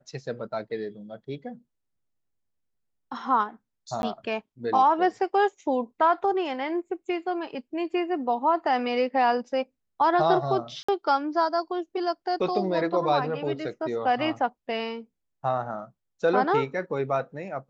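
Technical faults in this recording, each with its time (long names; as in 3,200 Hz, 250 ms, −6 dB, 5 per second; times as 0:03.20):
0:04.02–0:04.03: drop-out 11 ms
0:10.83–0:10.88: drop-out 55 ms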